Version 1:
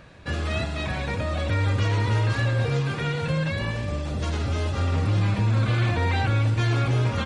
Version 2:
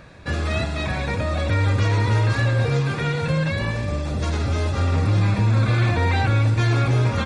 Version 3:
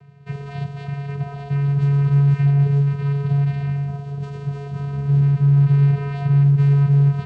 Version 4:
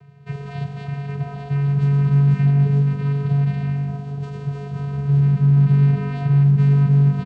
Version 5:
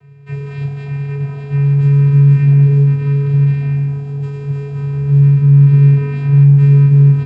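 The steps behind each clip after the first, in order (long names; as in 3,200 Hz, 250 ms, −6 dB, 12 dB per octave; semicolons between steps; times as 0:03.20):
notch filter 3,000 Hz, Q 7.4; level +3.5 dB
channel vocoder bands 8, square 141 Hz; level +4 dB
echo with shifted repeats 153 ms, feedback 36%, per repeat +50 Hz, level −17 dB
convolution reverb RT60 0.50 s, pre-delay 4 ms, DRR −2 dB; level −2 dB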